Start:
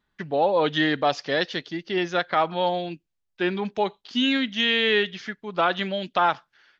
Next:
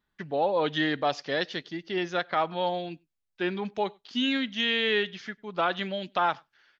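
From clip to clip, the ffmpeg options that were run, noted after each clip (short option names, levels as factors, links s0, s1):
-filter_complex "[0:a]asplit=2[s0][s1];[s1]adelay=99.13,volume=0.0316,highshelf=f=4000:g=-2.23[s2];[s0][s2]amix=inputs=2:normalize=0,volume=0.596"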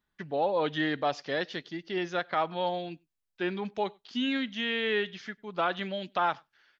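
-filter_complex "[0:a]acrossover=split=2700[s0][s1];[s1]acompressor=threshold=0.0158:ratio=4:attack=1:release=60[s2];[s0][s2]amix=inputs=2:normalize=0,volume=0.794"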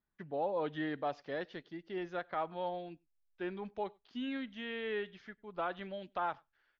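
-af "lowpass=f=1300:p=1,asubboost=boost=6.5:cutoff=63,volume=0.501"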